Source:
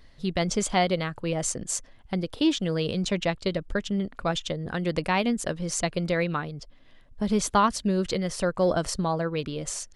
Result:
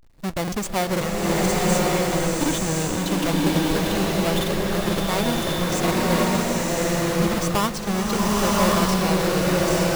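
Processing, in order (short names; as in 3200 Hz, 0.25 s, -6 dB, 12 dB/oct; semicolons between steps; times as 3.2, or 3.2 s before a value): half-waves squared off; notch 3200 Hz, Q 28; in parallel at -6.5 dB: Schmitt trigger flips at -29 dBFS; on the sum: crackling interface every 0.49 s, samples 2048, repeat, from 0.43; bloom reverb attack 1.1 s, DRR -5 dB; gain -7 dB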